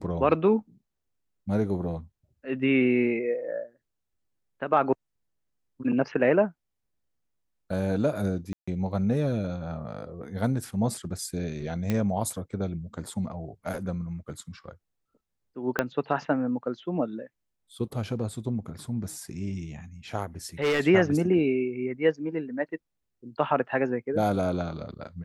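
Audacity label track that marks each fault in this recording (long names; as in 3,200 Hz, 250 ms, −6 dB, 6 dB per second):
8.530000	8.680000	drop-out 145 ms
11.900000	11.900000	click −14 dBFS
15.790000	15.790000	click −10 dBFS
20.620000	20.810000	clipping −21 dBFS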